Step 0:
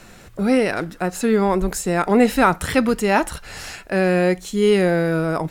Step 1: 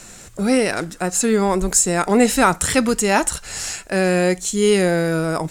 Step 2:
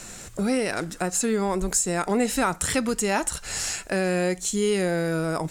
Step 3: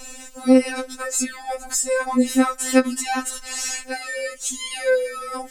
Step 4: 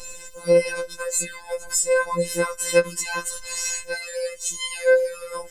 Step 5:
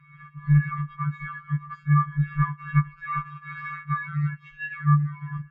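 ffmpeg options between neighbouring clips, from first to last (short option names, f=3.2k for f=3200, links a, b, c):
-af "equalizer=f=7.6k:t=o:w=1.1:g=14.5"
-af "acompressor=threshold=-26dB:ratio=2"
-af "afftfilt=real='re*3.46*eq(mod(b,12),0)':imag='im*3.46*eq(mod(b,12),0)':win_size=2048:overlap=0.75,volume=4dB"
-af "afftfilt=real='hypot(re,im)*cos(PI*b)':imag='0':win_size=1024:overlap=0.75,volume=2.5dB"
-af "highpass=f=410:t=q:w=0.5412,highpass=f=410:t=q:w=1.307,lowpass=f=2.4k:t=q:w=0.5176,lowpass=f=2.4k:t=q:w=0.7071,lowpass=f=2.4k:t=q:w=1.932,afreqshift=-370,afftfilt=real='re*(1-between(b*sr/4096,190,1000))':imag='im*(1-between(b*sr/4096,190,1000))':win_size=4096:overlap=0.75,dynaudnorm=f=140:g=3:m=12dB,volume=-8.5dB"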